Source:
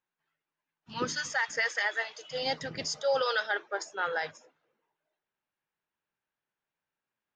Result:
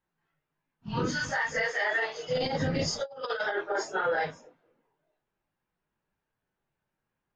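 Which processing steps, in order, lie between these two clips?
phase randomisation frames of 100 ms; tilt EQ -3 dB/octave; 1.88–4.05 s: compressor with a negative ratio -33 dBFS, ratio -0.5; peak limiter -24.5 dBFS, peak gain reduction 5 dB; trim +5 dB

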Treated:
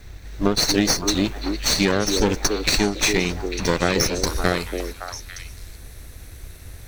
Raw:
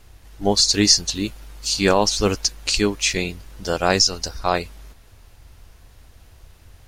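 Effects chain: comb filter that takes the minimum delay 0.5 ms; peaking EQ 11 kHz -10.5 dB 0.76 oct, from 4.27 s +7 dB; compression 10:1, threshold -24 dBFS, peak gain reduction 12.5 dB; repeats whose band climbs or falls 282 ms, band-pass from 380 Hz, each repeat 1.4 oct, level -2.5 dB; trim +8.5 dB

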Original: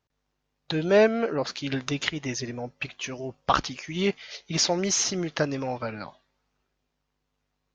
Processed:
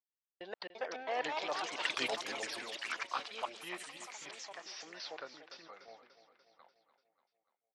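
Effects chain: slices played last to first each 153 ms, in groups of 3; Doppler pass-by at 1.80 s, 41 m/s, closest 4.5 m; high-pass 700 Hz 12 dB/octave; gate with hold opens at -57 dBFS; reverse; compression 8:1, threshold -46 dBFS, peak gain reduction 23 dB; reverse; boxcar filter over 6 samples; on a send: feedback delay 293 ms, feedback 57%, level -12.5 dB; on the sum: ever faster or slower copies 427 ms, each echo +4 st, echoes 3; trim +13 dB

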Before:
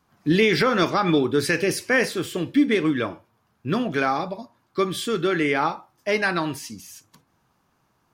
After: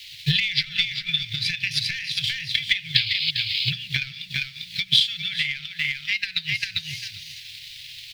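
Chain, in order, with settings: in parallel at -7 dB: word length cut 6-bit, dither triangular; on the sum: painted sound noise, 2.95–3.31 s, 2.1–5.2 kHz -30 dBFS; ten-band graphic EQ 125 Hz +8 dB, 250 Hz -11 dB, 500 Hz +5 dB, 1 kHz +11 dB, 2 kHz +10 dB, 4 kHz +8 dB, 8 kHz +3 dB; hard clipper -1 dBFS, distortion -18 dB; resonant high shelf 5.6 kHz -10.5 dB, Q 1.5; on a send: feedback delay 398 ms, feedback 16%, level -5 dB; on the sum: compression 10:1, threshold -15 dBFS, peak gain reduction 13.5 dB; inverse Chebyshev band-stop 290–1200 Hz, stop band 50 dB; hum notches 60/120/180 Hz; transient shaper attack +11 dB, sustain -4 dB; trim -2 dB

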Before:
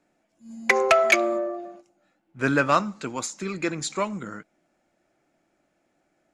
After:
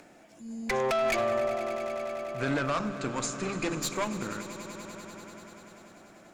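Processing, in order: hum notches 50/100/150/200/250/300/350 Hz; in parallel at -0.5 dB: upward compressor, threshold -29 dBFS; on the sum: peak limiter -10 dBFS, peak gain reduction 8 dB; valve stage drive 20 dB, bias 0.65; 2.42–3.71 s: brick-wall FIR low-pass 9.9 kHz; on a send: echo with a slow build-up 97 ms, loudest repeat 5, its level -17 dB; on the sum: trim -4 dB

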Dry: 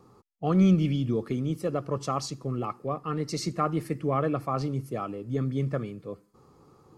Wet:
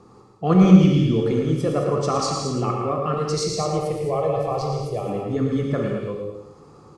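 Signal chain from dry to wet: 3.14–5.07 s: static phaser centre 620 Hz, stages 4; in parallel at -1 dB: level held to a coarse grid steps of 12 dB; on the sum: low-pass 9.4 kHz 24 dB/octave; feedback delay 112 ms, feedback 33%, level -7 dB; gated-style reverb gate 250 ms flat, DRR 0.5 dB; trim +2 dB

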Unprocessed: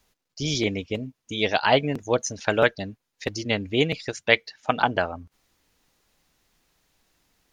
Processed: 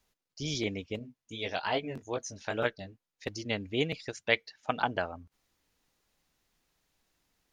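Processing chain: 0.99–3.24 s: chorus 2.4 Hz, delay 16.5 ms, depth 6 ms; trim -8 dB

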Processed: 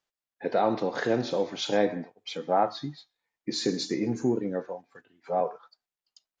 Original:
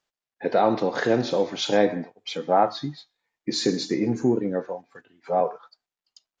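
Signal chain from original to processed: 3.79–4.63 s: treble shelf 4.6 kHz +6 dB; trim -4.5 dB

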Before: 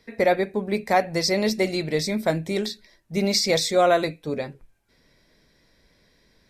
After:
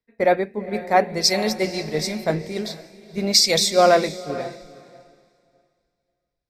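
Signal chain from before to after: echo that smears into a reverb 477 ms, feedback 46%, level -9 dB; three bands expanded up and down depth 100%; trim -1 dB

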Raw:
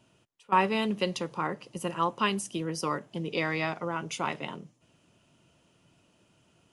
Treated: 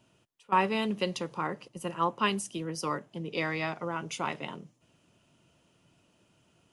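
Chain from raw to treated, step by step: 1.68–3.79 s: three bands expanded up and down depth 40%; trim -1.5 dB

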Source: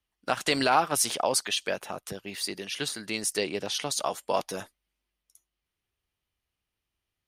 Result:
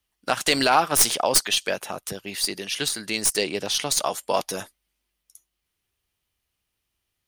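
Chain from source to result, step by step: tracing distortion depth 0.036 ms; treble shelf 4.2 kHz +6.5 dB; trim +3.5 dB

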